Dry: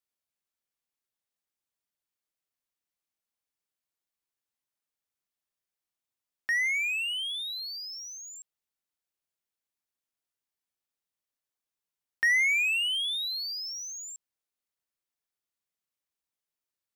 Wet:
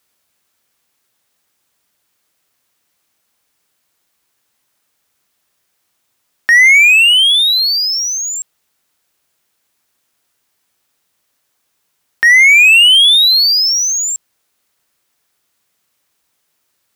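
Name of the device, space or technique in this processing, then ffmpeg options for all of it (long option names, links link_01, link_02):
mastering chain: -af "highpass=51,equalizer=frequency=1400:width_type=o:width=0.77:gain=1.5,acompressor=threshold=-29dB:ratio=2.5,alimiter=level_in=25dB:limit=-1dB:release=50:level=0:latency=1,volume=-1dB"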